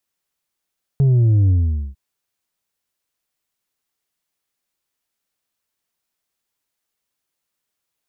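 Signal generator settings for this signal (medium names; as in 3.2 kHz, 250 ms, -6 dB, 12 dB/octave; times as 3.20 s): sub drop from 140 Hz, over 0.95 s, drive 4 dB, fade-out 0.46 s, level -11.5 dB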